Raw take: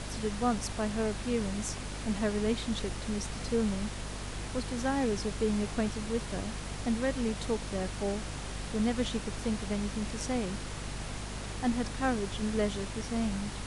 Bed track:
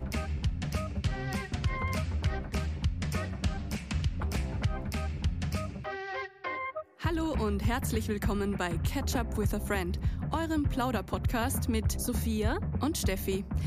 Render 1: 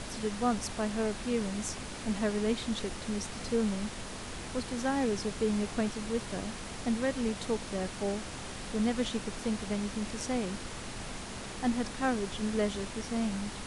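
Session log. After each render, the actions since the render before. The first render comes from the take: notches 50/100/150 Hz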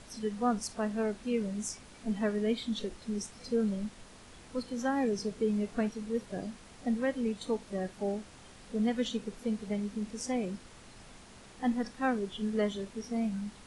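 noise print and reduce 12 dB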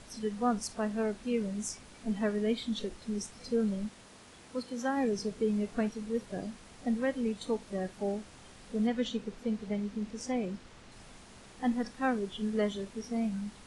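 3.87–4.96 HPF 87 Hz -> 200 Hz 6 dB/oct; 8.87–10.92 air absorption 51 m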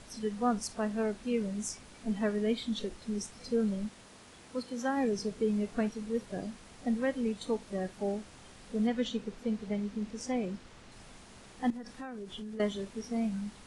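11.7–12.6 compressor 10:1, threshold -38 dBFS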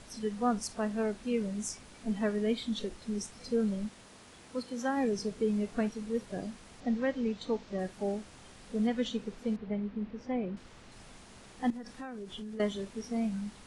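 6.8–7.79 LPF 6300 Hz 24 dB/oct; 9.56–10.57 air absorption 320 m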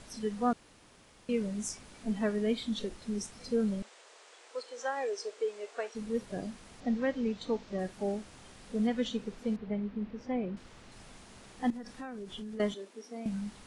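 0.53–1.29 room tone; 3.82–5.95 elliptic band-pass 440–8300 Hz; 12.74–13.26 ladder high-pass 250 Hz, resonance 25%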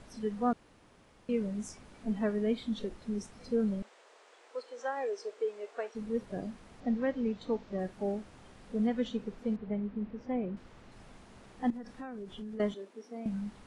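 high shelf 2800 Hz -10.5 dB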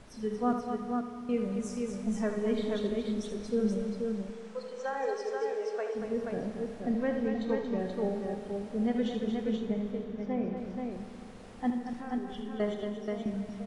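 tapped delay 77/231/480 ms -8.5/-7.5/-4 dB; Schroeder reverb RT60 3.4 s, combs from 29 ms, DRR 7.5 dB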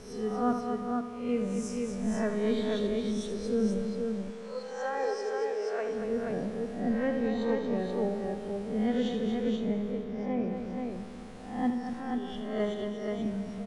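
spectral swells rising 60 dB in 0.66 s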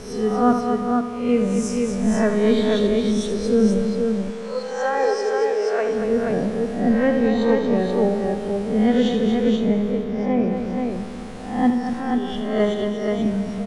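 gain +11 dB

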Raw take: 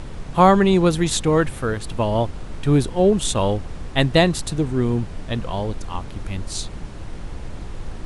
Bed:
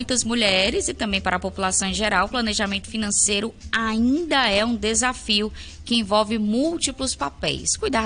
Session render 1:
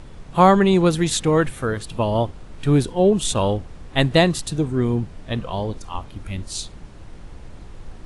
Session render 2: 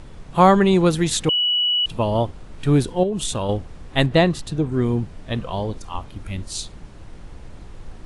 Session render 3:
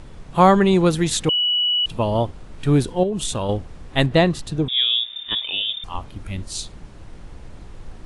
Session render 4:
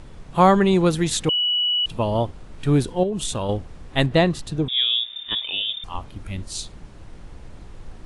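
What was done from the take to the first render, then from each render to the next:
noise print and reduce 7 dB
1.29–1.86 bleep 2940 Hz -16.5 dBFS; 3.03–3.49 compressor, threshold -20 dBFS; 4.06–4.72 LPF 3000 Hz 6 dB/oct
4.68–5.84 inverted band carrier 3600 Hz
gain -1.5 dB

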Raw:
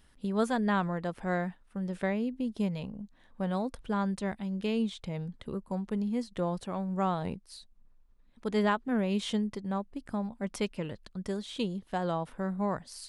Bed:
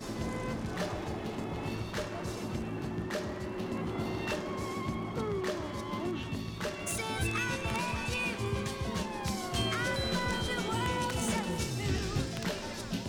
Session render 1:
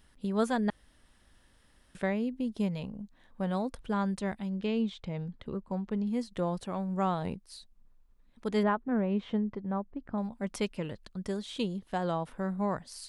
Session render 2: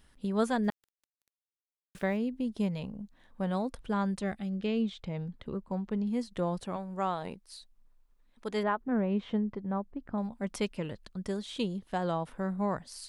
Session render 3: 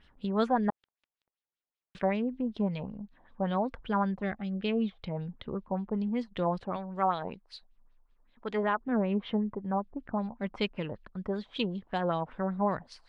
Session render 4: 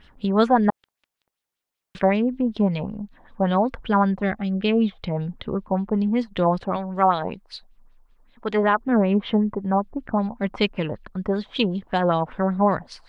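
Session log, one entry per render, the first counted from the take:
0.7–1.95 room tone; 4.49–6.07 air absorption 100 m; 8.63–10.18 LPF 1600 Hz
0.64–2.17 sample gate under -51 dBFS; 4.23–5.03 Butterworth band-stop 960 Hz, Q 4.8; 6.76–8.81 bell 86 Hz -12 dB 2.7 oct
LFO low-pass sine 5.2 Hz 750–4000 Hz
gain +9.5 dB

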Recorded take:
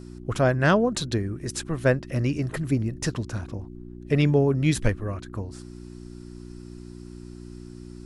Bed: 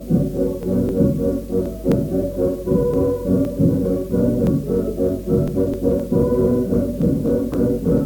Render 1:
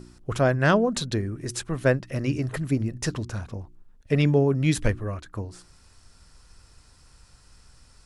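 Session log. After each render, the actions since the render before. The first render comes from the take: de-hum 60 Hz, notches 6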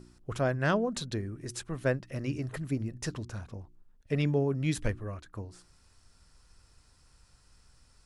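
gain -7.5 dB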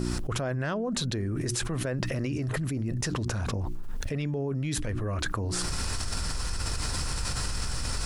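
limiter -25 dBFS, peak gain reduction 10 dB; fast leveller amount 100%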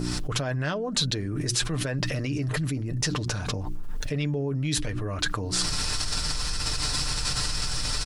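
dynamic EQ 4100 Hz, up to +8 dB, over -49 dBFS, Q 0.83; comb 6.7 ms, depth 44%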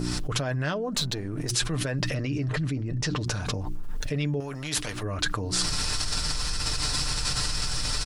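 0.94–1.51 half-wave gain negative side -7 dB; 2.14–3.21 air absorption 75 m; 4.4–5.03 spectral compressor 2:1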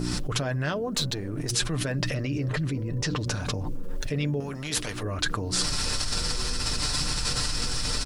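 add bed -25.5 dB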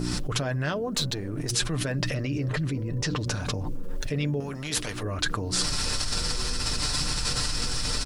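nothing audible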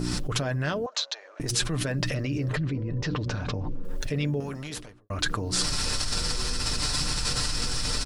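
0.86–1.4 Chebyshev band-pass 580–6600 Hz, order 4; 2.57–3.85 air absorption 150 m; 4.46–5.1 studio fade out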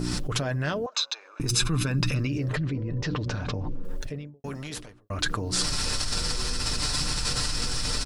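0.93–2.28 comb 0.8 ms, depth 64%; 3.84–4.44 studio fade out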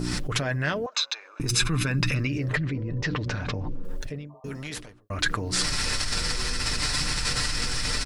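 4.32–4.55 spectral repair 540–1200 Hz after; dynamic EQ 2000 Hz, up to +8 dB, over -49 dBFS, Q 1.9

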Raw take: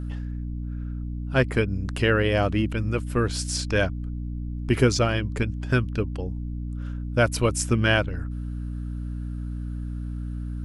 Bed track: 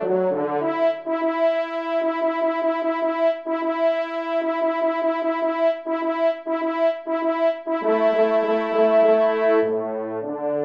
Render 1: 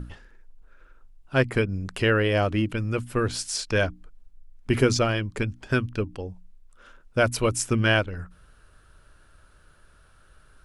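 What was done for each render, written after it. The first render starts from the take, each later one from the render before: notches 60/120/180/240/300 Hz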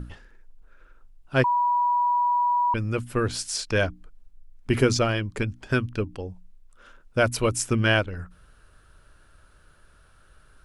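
1.44–2.74 bleep 972 Hz -19 dBFS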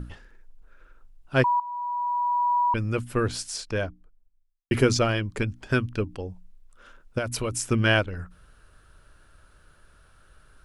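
1.6–2.57 fade in linear, from -15.5 dB; 3.12–4.71 studio fade out; 7.18–7.65 compressor, threshold -24 dBFS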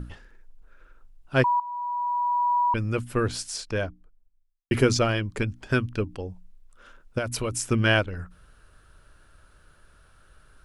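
nothing audible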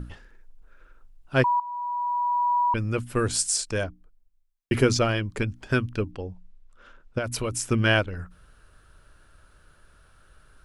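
3.15–3.84 bell 8300 Hz +13.5 dB 0.89 oct; 6.11–7.24 air absorption 72 m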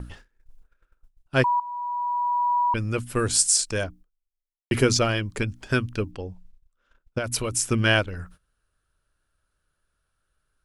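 gate -46 dBFS, range -20 dB; high shelf 3700 Hz +6.5 dB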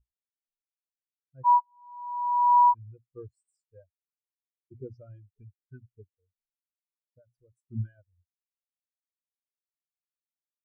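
limiter -14 dBFS, peak gain reduction 8 dB; spectral expander 4:1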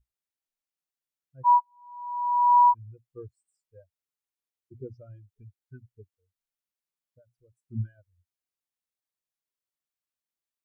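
gain +1 dB

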